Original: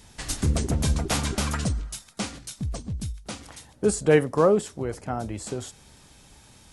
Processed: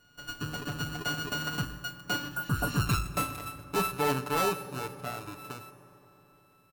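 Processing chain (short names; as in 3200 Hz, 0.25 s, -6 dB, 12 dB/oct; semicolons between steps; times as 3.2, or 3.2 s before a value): sample sorter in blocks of 32 samples; Doppler pass-by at 2.86, 15 m/s, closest 1.7 m; low shelf 80 Hz -11 dB; comb 6.9 ms, depth 92%; reverse; compressor, threshold -36 dBFS, peak gain reduction 8 dB; reverse; sine folder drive 9 dB, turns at -24 dBFS; spectral repair 2.35–2.76, 1700–7200 Hz both; on a send: reverb RT60 3.9 s, pre-delay 3 ms, DRR 11.5 dB; on the sum: gain +2.5 dB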